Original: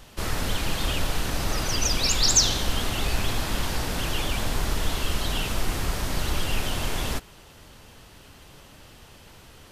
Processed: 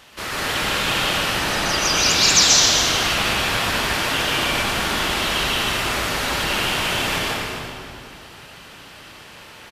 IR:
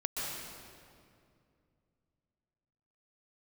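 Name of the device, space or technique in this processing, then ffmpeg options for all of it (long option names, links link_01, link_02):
stadium PA: -filter_complex "[0:a]asettb=1/sr,asplit=3[link_01][link_02][link_03];[link_01]atrim=end=1.384[link_04];[link_02]atrim=start=1.38:end=1.81,asetpts=PTS-STARTPTS,afade=type=in:duration=0.004:curve=qsin,afade=type=out:start_time=0.426:duration=0.004:curve=qsin,lowpass=12000[link_05];[link_03]atrim=start=1.806[link_06];[link_04][link_05]acrossfade=duration=0.004:curve1=hsin:curve2=qsin[link_07];[link_07][link_06]acrossfade=duration=0.004:curve1=qsin:curve2=hsin,highpass=frequency=210:poles=1,equalizer=frequency=2100:width_type=o:width=2.5:gain=7.5,aecho=1:1:148.7|259.5:0.282|0.282[link_08];[1:a]atrim=start_sample=2205[link_09];[link_08][link_09]afir=irnorm=-1:irlink=0"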